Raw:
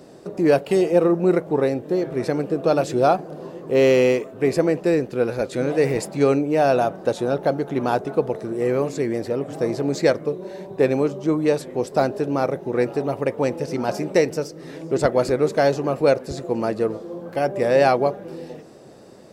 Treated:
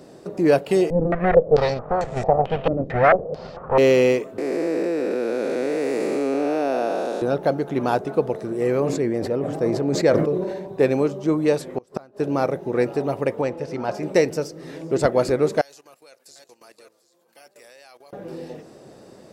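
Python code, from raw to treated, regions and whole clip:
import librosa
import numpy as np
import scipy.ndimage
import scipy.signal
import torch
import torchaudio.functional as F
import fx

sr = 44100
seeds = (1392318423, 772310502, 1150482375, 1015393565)

y = fx.chain(x, sr, fx.lower_of_two(delay_ms=1.6),
    fx.filter_held_lowpass(hz=4.5, low_hz=310.0, high_hz=7500.0), at=(0.9, 3.78))
y = fx.chain(y, sr, fx.spec_blur(span_ms=448.0),
    fx.highpass(hz=230.0, slope=24),
    fx.env_flatten(amount_pct=50), at=(4.38, 7.22))
y = fx.chain(y, sr, fx.high_shelf(hz=2200.0, db=-7.5),
    fx.sustainer(db_per_s=40.0), at=(8.8, 10.68))
y = fx.chain(y, sr, fx.peak_eq(hz=1200.0, db=6.0, octaves=0.7),
    fx.gate_flip(shuts_db=-12.0, range_db=-28), at=(11.69, 12.2))
y = fx.chain(y, sr, fx.lowpass(hz=2600.0, slope=6),
    fx.peak_eq(hz=220.0, db=-5.0, octaves=2.0), at=(13.41, 14.03))
y = fx.chain(y, sr, fx.differentiator(),
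    fx.echo_single(ms=745, db=-11.0),
    fx.level_steps(step_db=16), at=(15.61, 18.13))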